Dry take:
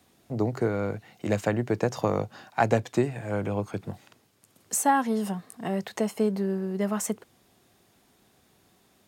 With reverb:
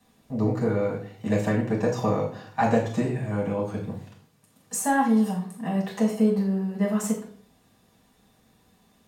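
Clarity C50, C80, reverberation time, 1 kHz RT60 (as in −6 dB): 7.0 dB, 11.5 dB, 0.55 s, 0.50 s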